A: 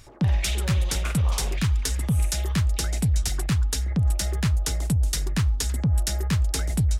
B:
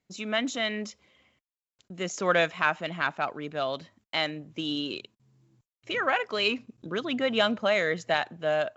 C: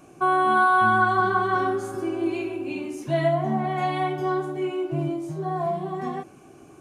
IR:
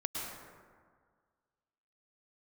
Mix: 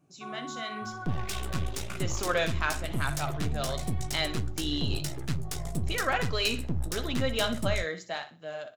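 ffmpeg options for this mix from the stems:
-filter_complex "[0:a]highpass=53,aeval=exprs='max(val(0),0)':channel_layout=same,adelay=850,volume=-0.5dB[link_01];[1:a]dynaudnorm=framelen=200:gausssize=11:maxgain=11.5dB,aexciter=amount=1.6:drive=8:freq=3900,volume=-8.5dB,asplit=2[link_02][link_03];[link_03]volume=-11.5dB[link_04];[2:a]equalizer=frequency=150:width=1.5:gain=13.5,volume=-17.5dB[link_05];[link_04]aecho=0:1:61|122|183|244:1|0.27|0.0729|0.0197[link_06];[link_01][link_02][link_05][link_06]amix=inputs=4:normalize=0,flanger=delay=6.8:depth=6:regen=-51:speed=0.95:shape=sinusoidal"

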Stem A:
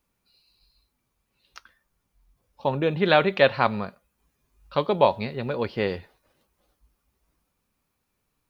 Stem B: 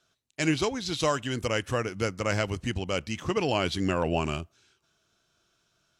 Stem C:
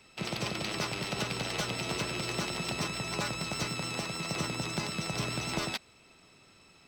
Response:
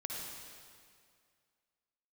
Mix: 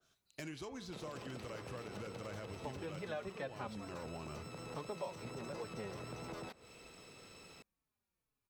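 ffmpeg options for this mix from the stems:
-filter_complex "[0:a]asplit=2[link_01][link_02];[link_02]adelay=4.1,afreqshift=-2.3[link_03];[link_01][link_03]amix=inputs=2:normalize=1,volume=-11dB[link_04];[1:a]bandreject=frequency=113.1:width_type=h:width=4,bandreject=frequency=226.2:width_type=h:width=4,bandreject=frequency=339.3:width_type=h:width=4,bandreject=frequency=452.4:width_type=h:width=4,bandreject=frequency=565.5:width_type=h:width=4,bandreject=frequency=678.6:width_type=h:width=4,bandreject=frequency=791.7:width_type=h:width=4,bandreject=frequency=904.8:width_type=h:width=4,bandreject=frequency=1017.9:width_type=h:width=4,bandreject=frequency=1131:width_type=h:width=4,bandreject=frequency=1244.1:width_type=h:width=4,bandreject=frequency=1357.2:width_type=h:width=4,bandreject=frequency=1470.3:width_type=h:width=4,bandreject=frequency=1583.4:width_type=h:width=4,bandreject=frequency=1696.5:width_type=h:width=4,bandreject=frequency=1809.6:width_type=h:width=4,bandreject=frequency=1922.7:width_type=h:width=4,bandreject=frequency=2035.8:width_type=h:width=4,bandreject=frequency=2148.9:width_type=h:width=4,bandreject=frequency=2262:width_type=h:width=4,bandreject=frequency=2375.1:width_type=h:width=4,bandreject=frequency=2488.2:width_type=h:width=4,bandreject=frequency=2601.3:width_type=h:width=4,bandreject=frequency=2714.4:width_type=h:width=4,acompressor=threshold=-36dB:ratio=6,asoftclip=type=tanh:threshold=-30dB,volume=-3.5dB,asplit=2[link_05][link_06];[2:a]equalizer=frequency=480:width_type=o:width=0.32:gain=9.5,acompressor=threshold=-38dB:ratio=2.5,adelay=750,volume=1.5dB[link_07];[link_06]apad=whole_len=336144[link_08];[link_07][link_08]sidechaincompress=threshold=-49dB:ratio=4:attack=16:release=1330[link_09];[link_05][link_09]amix=inputs=2:normalize=0,highshelf=frequency=9400:gain=8,alimiter=level_in=9dB:limit=-24dB:level=0:latency=1:release=18,volume=-9dB,volume=0dB[link_10];[link_04][link_10]amix=inputs=2:normalize=0,acrossover=split=700|1600[link_11][link_12][link_13];[link_11]acompressor=threshold=-44dB:ratio=4[link_14];[link_12]acompressor=threshold=-50dB:ratio=4[link_15];[link_13]acompressor=threshold=-49dB:ratio=4[link_16];[link_14][link_15][link_16]amix=inputs=3:normalize=0,adynamicequalizer=threshold=0.00112:dfrequency=2000:dqfactor=0.7:tfrequency=2000:tqfactor=0.7:attack=5:release=100:ratio=0.375:range=3.5:mode=cutabove:tftype=highshelf"

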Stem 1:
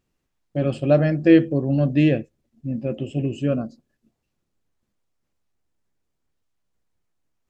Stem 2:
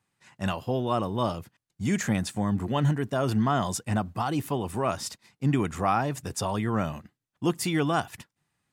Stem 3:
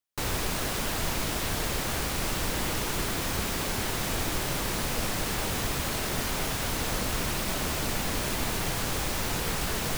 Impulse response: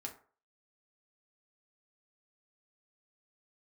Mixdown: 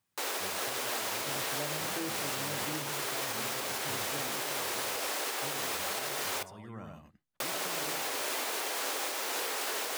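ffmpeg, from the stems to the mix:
-filter_complex "[0:a]adelay=700,volume=-16.5dB[link_01];[1:a]acompressor=threshold=-35dB:ratio=2.5,volume=-9dB,asplit=2[link_02][link_03];[link_03]volume=-4.5dB[link_04];[2:a]highpass=frequency=380:width=0.5412,highpass=frequency=380:width=1.3066,volume=2.5dB,asplit=3[link_05][link_06][link_07];[link_05]atrim=end=6.43,asetpts=PTS-STARTPTS,afade=type=out:start_time=6.426:duration=0.004:curve=hsin[link_08];[link_06]atrim=start=6.43:end=7.4,asetpts=PTS-STARTPTS,volume=0[link_09];[link_07]atrim=start=7.4,asetpts=PTS-STARTPTS,afade=type=in:duration=0.004:curve=hsin[link_10];[link_08][link_09][link_10]concat=n=3:v=0:a=1,asplit=2[link_11][link_12];[link_12]volume=-8dB[link_13];[3:a]atrim=start_sample=2205[link_14];[link_13][link_14]afir=irnorm=-1:irlink=0[link_15];[link_04]aecho=0:1:97:1[link_16];[link_01][link_02][link_11][link_15][link_16]amix=inputs=5:normalize=0,alimiter=limit=-24dB:level=0:latency=1:release=495"

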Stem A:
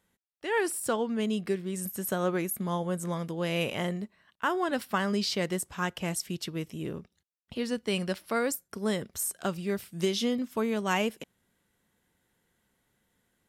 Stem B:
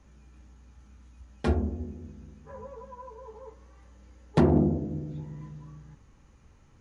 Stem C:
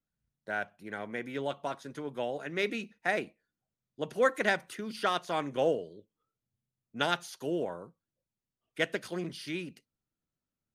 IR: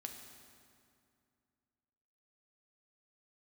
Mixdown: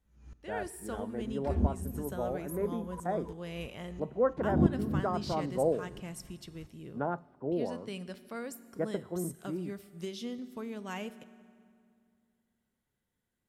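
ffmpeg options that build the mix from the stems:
-filter_complex "[0:a]volume=-16dB,asplit=2[link_01][link_02];[link_02]volume=-3dB[link_03];[1:a]aeval=exprs='val(0)*pow(10,-31*if(lt(mod(-3*n/s,1),2*abs(-3)/1000),1-mod(-3*n/s,1)/(2*abs(-3)/1000),(mod(-3*n/s,1)-2*abs(-3)/1000)/(1-2*abs(-3)/1000))/20)':channel_layout=same,volume=0.5dB,asplit=2[link_04][link_05];[link_05]volume=-3dB[link_06];[2:a]lowpass=frequency=1100:width=0.5412,lowpass=frequency=1100:width=1.3066,volume=-2dB,asplit=3[link_07][link_08][link_09];[link_08]volume=-18.5dB[link_10];[link_09]apad=whole_len=300227[link_11];[link_04][link_11]sidechaincompress=threshold=-36dB:ratio=8:attack=16:release=320[link_12];[3:a]atrim=start_sample=2205[link_13];[link_03][link_06][link_10]amix=inputs=3:normalize=0[link_14];[link_14][link_13]afir=irnorm=-1:irlink=0[link_15];[link_01][link_12][link_07][link_15]amix=inputs=4:normalize=0,lowshelf=frequency=190:gain=6.5"

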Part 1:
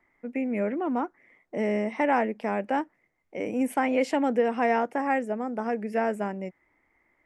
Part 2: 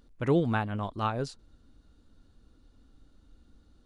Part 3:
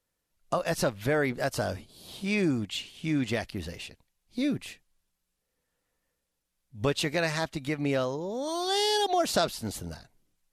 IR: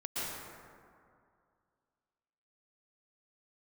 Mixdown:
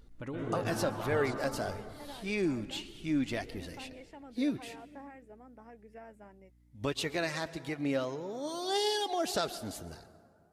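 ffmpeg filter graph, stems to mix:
-filter_complex "[0:a]volume=-18dB[link_01];[1:a]acompressor=threshold=-29dB:ratio=6,volume=2.5dB,asplit=2[link_02][link_03];[link_03]volume=-7dB[link_04];[2:a]highpass=46,volume=-2dB,asplit=2[link_05][link_06];[link_06]volume=-19dB[link_07];[link_01][link_02]amix=inputs=2:normalize=0,aeval=exprs='val(0)+0.00126*(sin(2*PI*60*n/s)+sin(2*PI*2*60*n/s)/2+sin(2*PI*3*60*n/s)/3+sin(2*PI*4*60*n/s)/4+sin(2*PI*5*60*n/s)/5)':channel_layout=same,alimiter=level_in=10.5dB:limit=-24dB:level=0:latency=1:release=268,volume=-10.5dB,volume=0dB[link_08];[3:a]atrim=start_sample=2205[link_09];[link_04][link_07]amix=inputs=2:normalize=0[link_10];[link_10][link_09]afir=irnorm=-1:irlink=0[link_11];[link_05][link_08][link_11]amix=inputs=3:normalize=0,flanger=delay=2.1:depth=1.7:regen=55:speed=1.7:shape=triangular"

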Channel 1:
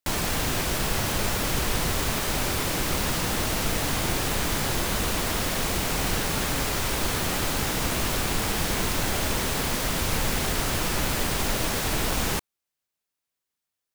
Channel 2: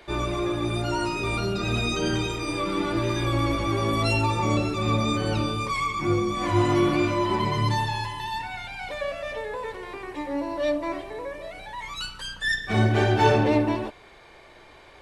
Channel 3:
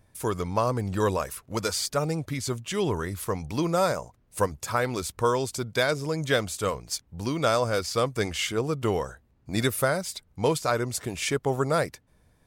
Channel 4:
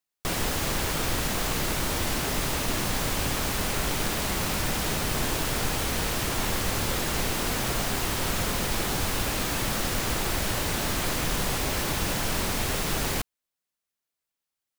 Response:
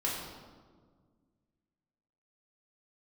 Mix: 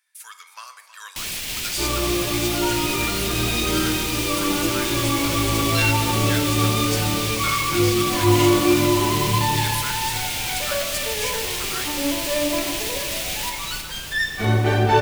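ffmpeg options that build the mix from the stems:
-filter_complex "[0:a]highshelf=frequency=1800:width_type=q:width=1.5:gain=11.5,alimiter=limit=-11dB:level=0:latency=1,adelay=1100,volume=-8.5dB,asplit=2[link_01][link_02];[link_02]volume=-4dB[link_03];[1:a]adelay=1700,volume=-2dB,asplit=2[link_04][link_05];[link_05]volume=-6.5dB[link_06];[2:a]highpass=frequency=1500:width=0.5412,highpass=frequency=1500:width=1.3066,volume=-2dB,asplit=3[link_07][link_08][link_09];[link_08]volume=-12dB[link_10];[link_09]volume=-13dB[link_11];[3:a]asoftclip=type=tanh:threshold=-31.5dB,adelay=2450,volume=-10dB[link_12];[4:a]atrim=start_sample=2205[link_13];[link_06][link_10]amix=inputs=2:normalize=0[link_14];[link_14][link_13]afir=irnorm=-1:irlink=0[link_15];[link_03][link_11]amix=inputs=2:normalize=0,aecho=0:1:319|638|957|1276|1595|1914|2233|2552|2871:1|0.59|0.348|0.205|0.121|0.0715|0.0422|0.0249|0.0147[link_16];[link_01][link_04][link_07][link_12][link_15][link_16]amix=inputs=6:normalize=0"

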